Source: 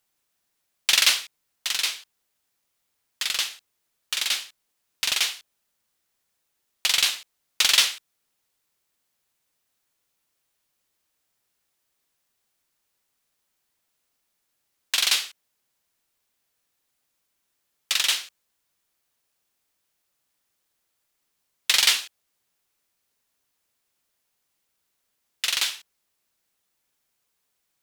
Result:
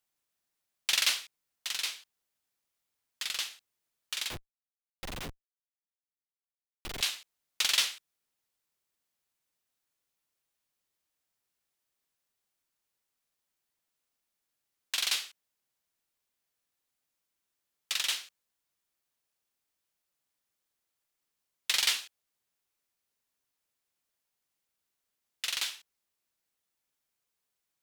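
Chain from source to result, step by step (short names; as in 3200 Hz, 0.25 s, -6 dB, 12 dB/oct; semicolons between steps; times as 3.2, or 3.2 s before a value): 4.3–7.01 Schmitt trigger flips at -21.5 dBFS; gain -8.5 dB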